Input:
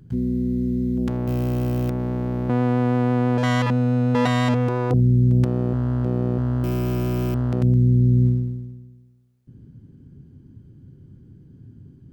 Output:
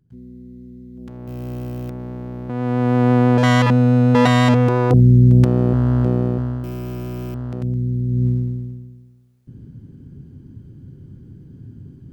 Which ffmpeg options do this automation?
-af "volume=17dB,afade=t=in:st=0.92:d=0.6:silence=0.298538,afade=t=in:st=2.53:d=0.58:silence=0.266073,afade=t=out:st=6.01:d=0.63:silence=0.281838,afade=t=in:st=8.07:d=0.65:silence=0.281838"

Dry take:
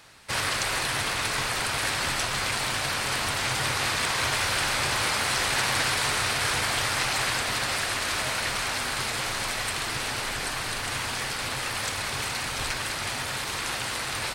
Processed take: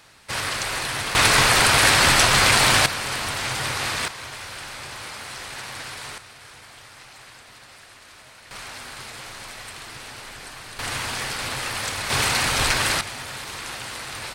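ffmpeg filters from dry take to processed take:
-af "asetnsamples=n=441:p=0,asendcmd='1.15 volume volume 11.5dB;2.86 volume volume 0.5dB;4.08 volume volume -10dB;6.18 volume volume -19dB;8.51 volume volume -8.5dB;10.79 volume volume 2dB;12.1 volume volume 9dB;13.01 volume volume -3dB',volume=0.5dB"

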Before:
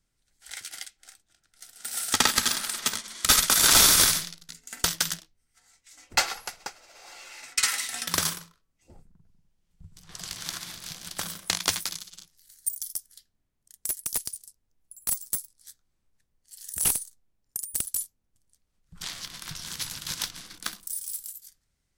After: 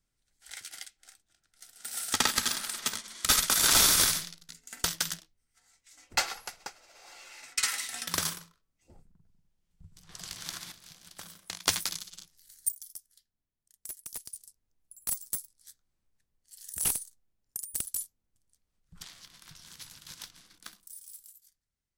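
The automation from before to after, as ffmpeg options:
-af "asetnsamples=n=441:p=0,asendcmd='10.72 volume volume -13dB;11.67 volume volume -1dB;12.72 volume volume -11.5dB;14.33 volume volume -4.5dB;19.03 volume volume -13.5dB',volume=-4.5dB"

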